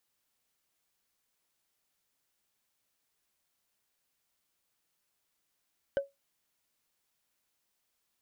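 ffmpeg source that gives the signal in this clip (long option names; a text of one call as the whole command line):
ffmpeg -f lavfi -i "aevalsrc='0.0794*pow(10,-3*t/0.18)*sin(2*PI*556*t)+0.0251*pow(10,-3*t/0.053)*sin(2*PI*1532.9*t)+0.00794*pow(10,-3*t/0.024)*sin(2*PI*3004.6*t)+0.00251*pow(10,-3*t/0.013)*sin(2*PI*4966.7*t)+0.000794*pow(10,-3*t/0.008)*sin(2*PI*7417*t)':duration=0.45:sample_rate=44100" out.wav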